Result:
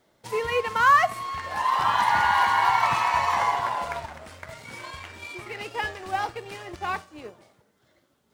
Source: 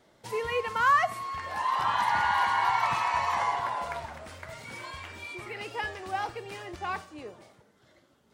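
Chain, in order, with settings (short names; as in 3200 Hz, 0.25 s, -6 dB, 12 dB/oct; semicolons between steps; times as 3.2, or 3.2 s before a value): G.711 law mismatch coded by A; gain +5.5 dB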